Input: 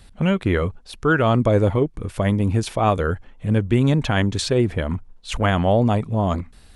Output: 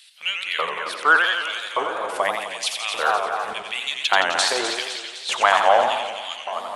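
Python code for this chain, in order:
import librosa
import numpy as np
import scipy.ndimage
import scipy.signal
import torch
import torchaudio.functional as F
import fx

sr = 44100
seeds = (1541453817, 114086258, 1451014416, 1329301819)

y = fx.low_shelf(x, sr, hz=420.0, db=-6.5)
y = fx.echo_split(y, sr, split_hz=450.0, low_ms=398, high_ms=255, feedback_pct=52, wet_db=-9.5)
y = fx.filter_lfo_highpass(y, sr, shape='square', hz=0.85, low_hz=860.0, high_hz=2900.0, q=2.0)
y = fx.echo_warbled(y, sr, ms=88, feedback_pct=65, rate_hz=2.8, cents=159, wet_db=-6.0)
y = y * 10.0 ** (4.0 / 20.0)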